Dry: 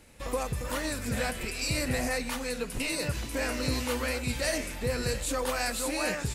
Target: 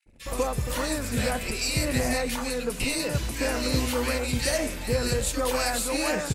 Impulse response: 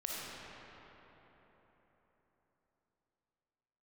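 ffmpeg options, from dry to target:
-filter_complex "[0:a]anlmdn=0.001,acrossover=split=1800[link_01][link_02];[link_01]adelay=60[link_03];[link_03][link_02]amix=inputs=2:normalize=0,aeval=exprs='0.168*(cos(1*acos(clip(val(0)/0.168,-1,1)))-cos(1*PI/2))+0.00668*(cos(3*acos(clip(val(0)/0.168,-1,1)))-cos(3*PI/2))':channel_layout=same,volume=5.5dB"

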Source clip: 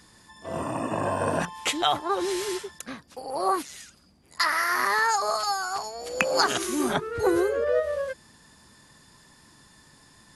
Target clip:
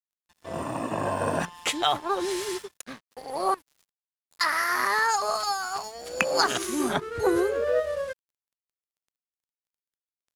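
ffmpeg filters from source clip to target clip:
ffmpeg -i in.wav -filter_complex "[0:a]asettb=1/sr,asplit=3[link_01][link_02][link_03];[link_01]atrim=end=3.544[link_04];[link_02]atrim=start=3.54:end=4.41,asetpts=PTS-STARTPTS,afade=type=in:duration=0.004:curve=qsin,afade=type=out:start_time=0.866:duration=0.004:curve=qsin,acrossover=split=160[link_05][link_06];[link_06]acompressor=threshold=-48dB:ratio=3[link_07];[link_05][link_07]amix=inputs=2:normalize=0[link_08];[link_03]atrim=start=4.406[link_09];[link_04][link_08]acrossfade=duration=0.004:curve1=hsin:curve2=qsin[link_10];[link_10][link_09]acrossfade=duration=0.004:curve1=qsin:curve2=hsin,aeval=exprs='sgn(val(0))*max(abs(val(0))-0.00596,0)':channel_layout=same" out.wav

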